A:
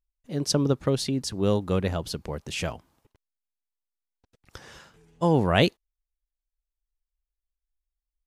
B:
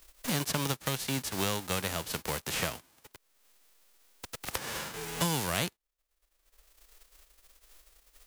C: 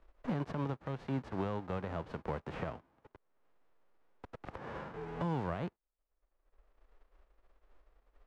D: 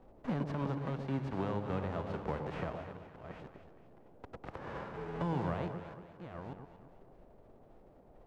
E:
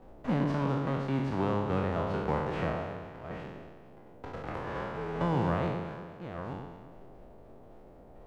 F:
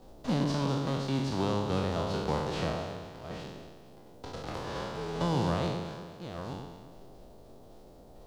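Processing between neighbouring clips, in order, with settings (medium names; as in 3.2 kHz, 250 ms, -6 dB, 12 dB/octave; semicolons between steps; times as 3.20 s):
formants flattened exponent 0.3; three bands compressed up and down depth 100%; trim -7.5 dB
peak limiter -19.5 dBFS, peak gain reduction 7 dB; low-pass 1.1 kHz 12 dB/octave; trim -1 dB
chunks repeated in reverse 594 ms, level -9 dB; echo whose repeats swap between lows and highs 116 ms, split 860 Hz, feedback 63%, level -6 dB; band noise 57–700 Hz -61 dBFS
spectral sustain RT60 1.13 s; trim +4 dB
resonant high shelf 3 kHz +12 dB, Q 1.5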